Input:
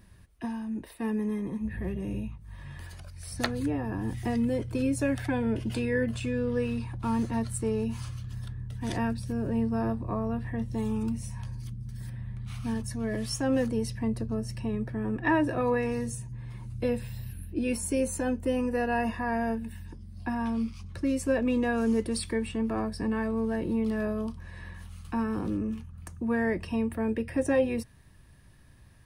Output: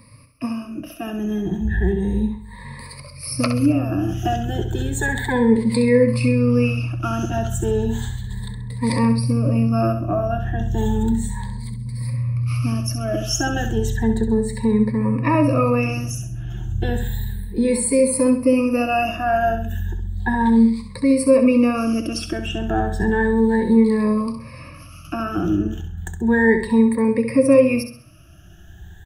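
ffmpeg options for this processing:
-filter_complex "[0:a]afftfilt=real='re*pow(10,23/40*sin(2*PI*(0.95*log(max(b,1)*sr/1024/100)/log(2)-(0.33)*(pts-256)/sr)))':imag='im*pow(10,23/40*sin(2*PI*(0.95*log(max(b,1)*sr/1024/100)/log(2)-(0.33)*(pts-256)/sr)))':win_size=1024:overlap=0.75,asplit=2[s0][s1];[s1]alimiter=limit=0.141:level=0:latency=1:release=168,volume=0.891[s2];[s0][s2]amix=inputs=2:normalize=0,aecho=1:1:66|132|198|264:0.376|0.135|0.0487|0.0175"

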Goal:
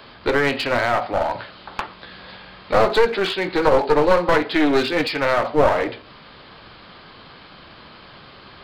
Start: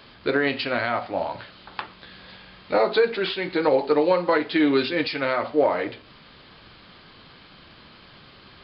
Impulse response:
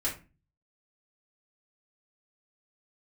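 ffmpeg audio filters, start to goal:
-filter_complex "[0:a]acrossover=split=470|1400[s0][s1][s2];[s1]acontrast=34[s3];[s0][s3][s2]amix=inputs=3:normalize=0,aeval=exprs='clip(val(0),-1,0.0668)':c=same,volume=1.5"

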